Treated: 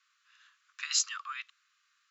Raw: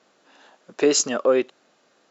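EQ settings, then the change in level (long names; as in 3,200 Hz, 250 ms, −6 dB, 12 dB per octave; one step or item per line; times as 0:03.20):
Butterworth high-pass 1,100 Hz 96 dB per octave
dynamic equaliser 4,200 Hz, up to +6 dB, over −43 dBFS, Q 2.4
parametric band 2,400 Hz +2.5 dB 0.69 octaves
−8.5 dB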